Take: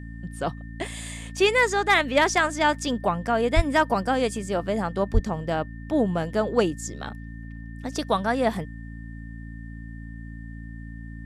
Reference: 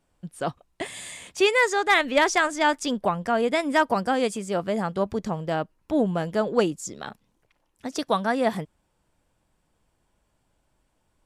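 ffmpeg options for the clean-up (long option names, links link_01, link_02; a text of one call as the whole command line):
ffmpeg -i in.wav -filter_complex "[0:a]bandreject=frequency=56.4:width_type=h:width=4,bandreject=frequency=112.8:width_type=h:width=4,bandreject=frequency=169.2:width_type=h:width=4,bandreject=frequency=225.6:width_type=h:width=4,bandreject=frequency=282:width_type=h:width=4,bandreject=frequency=1800:width=30,asplit=3[link_01][link_02][link_03];[link_01]afade=type=out:start_time=3.55:duration=0.02[link_04];[link_02]highpass=frequency=140:width=0.5412,highpass=frequency=140:width=1.3066,afade=type=in:start_time=3.55:duration=0.02,afade=type=out:start_time=3.67:duration=0.02[link_05];[link_03]afade=type=in:start_time=3.67:duration=0.02[link_06];[link_04][link_05][link_06]amix=inputs=3:normalize=0,asplit=3[link_07][link_08][link_09];[link_07]afade=type=out:start_time=5.13:duration=0.02[link_10];[link_08]highpass=frequency=140:width=0.5412,highpass=frequency=140:width=1.3066,afade=type=in:start_time=5.13:duration=0.02,afade=type=out:start_time=5.25:duration=0.02[link_11];[link_09]afade=type=in:start_time=5.25:duration=0.02[link_12];[link_10][link_11][link_12]amix=inputs=3:normalize=0" out.wav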